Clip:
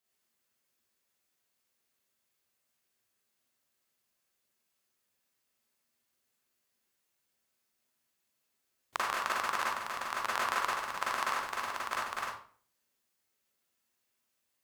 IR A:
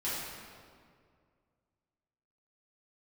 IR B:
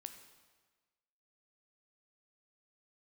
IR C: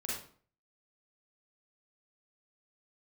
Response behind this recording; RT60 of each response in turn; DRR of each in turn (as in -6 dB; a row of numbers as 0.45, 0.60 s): C; 2.1, 1.4, 0.50 s; -11.0, 7.0, -6.0 dB